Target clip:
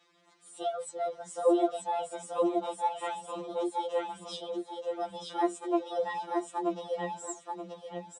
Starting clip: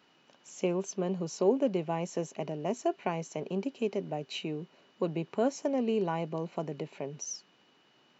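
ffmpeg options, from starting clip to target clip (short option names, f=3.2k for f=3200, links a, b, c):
-af "asetrate=57191,aresample=44100,atempo=0.771105,aecho=1:1:930|1860|2790:0.708|0.17|0.0408,afftfilt=real='re*2.83*eq(mod(b,8),0)':imag='im*2.83*eq(mod(b,8),0)':win_size=2048:overlap=0.75"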